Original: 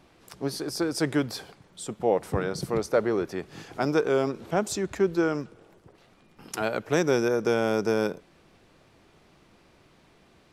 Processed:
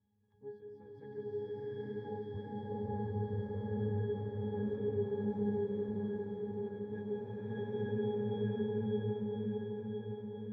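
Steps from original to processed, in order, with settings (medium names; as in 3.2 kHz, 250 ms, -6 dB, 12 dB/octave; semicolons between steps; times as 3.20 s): tone controls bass +7 dB, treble -9 dB; pitch-class resonator G#, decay 0.38 s; on a send: shuffle delay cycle 1018 ms, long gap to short 1.5:1, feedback 52%, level -4 dB; on the sum: swelling reverb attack 860 ms, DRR -8.5 dB; trim -8.5 dB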